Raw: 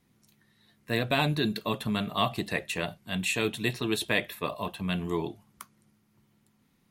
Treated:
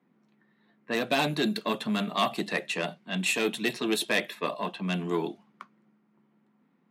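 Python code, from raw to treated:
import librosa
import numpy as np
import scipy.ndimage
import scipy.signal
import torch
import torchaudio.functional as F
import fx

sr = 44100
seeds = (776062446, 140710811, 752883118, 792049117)

y = fx.cheby_harmonics(x, sr, harmonics=(4, 5), levels_db=(-18, -20), full_scale_db=-10.0)
y = scipy.signal.sosfilt(scipy.signal.butter(6, 170.0, 'highpass', fs=sr, output='sos'), y)
y = fx.env_lowpass(y, sr, base_hz=1600.0, full_db=-23.0)
y = y * 10.0 ** (-1.0 / 20.0)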